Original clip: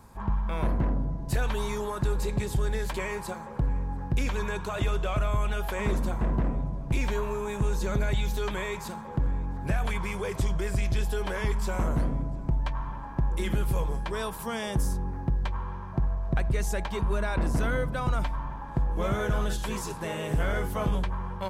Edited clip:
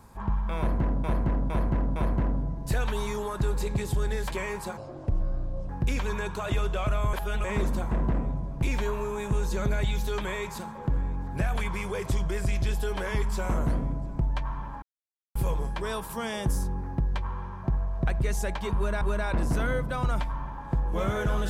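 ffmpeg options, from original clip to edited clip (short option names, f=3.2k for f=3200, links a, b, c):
-filter_complex "[0:a]asplit=11[a][b][c][d][e][f][g][h][i][j][k];[a]atrim=end=1.042[l];[b]atrim=start=0.578:end=1.042[m];[c]atrim=start=0.578:end=1.042[n];[d]atrim=start=0.578:end=3.394[o];[e]atrim=start=3.39:end=3.99,asetpts=PTS-STARTPTS,asetrate=28665,aresample=44100[p];[f]atrim=start=3.986:end=5.432[q];[g]atrim=start=5.428:end=5.742,asetpts=PTS-STARTPTS,areverse[r];[h]atrim=start=5.738:end=13.12,asetpts=PTS-STARTPTS,afade=t=out:st=7.378:d=0.004:c=hsin[s];[i]atrim=start=13.12:end=13.65,asetpts=PTS-STARTPTS,volume=0[t];[j]atrim=start=13.65:end=17.312,asetpts=PTS-STARTPTS,afade=t=in:d=0.004:c=hsin[u];[k]atrim=start=17.048[v];[l][m]acrossfade=d=0.004:c1=hsin:c2=hsin[w];[w][n]acrossfade=d=0.004:c1=hsin:c2=hsin[x];[x][o]acrossfade=d=0.004:c1=hsin:c2=hsin[y];[y][p]acrossfade=d=0.004:c1=hsin:c2=hsin[z];[z][q]acrossfade=d=0.004:c1=hsin:c2=hsin[aa];[aa][r]acrossfade=d=0.004:c1=hsin:c2=hsin[ab];[s][t][u]concat=n=3:v=0:a=1[ac];[ab][ac]acrossfade=d=0.004:c1=hsin:c2=hsin[ad];[ad][v]acrossfade=d=0.004:c1=hsin:c2=hsin"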